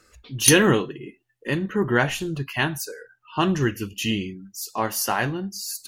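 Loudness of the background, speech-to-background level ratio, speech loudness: -21.0 LUFS, -3.0 dB, -24.0 LUFS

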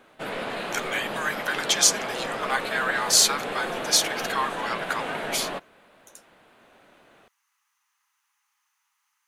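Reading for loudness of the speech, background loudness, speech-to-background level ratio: -24.5 LUFS, -31.5 LUFS, 7.0 dB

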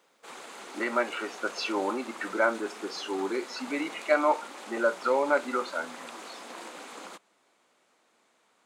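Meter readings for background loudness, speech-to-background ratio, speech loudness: -43.0 LUFS, 13.5 dB, -29.5 LUFS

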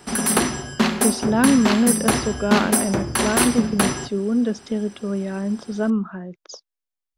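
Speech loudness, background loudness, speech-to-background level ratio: -22.5 LUFS, -21.0 LUFS, -1.5 dB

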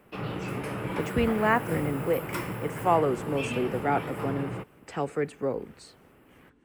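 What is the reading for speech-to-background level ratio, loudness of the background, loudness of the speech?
5.5 dB, -34.5 LUFS, -29.0 LUFS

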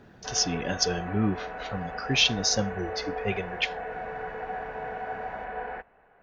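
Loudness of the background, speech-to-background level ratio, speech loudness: -36.0 LUFS, 8.0 dB, -28.0 LUFS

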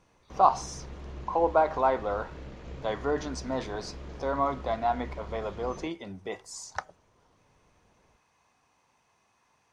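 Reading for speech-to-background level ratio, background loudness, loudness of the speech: 14.0 dB, -44.0 LUFS, -30.0 LUFS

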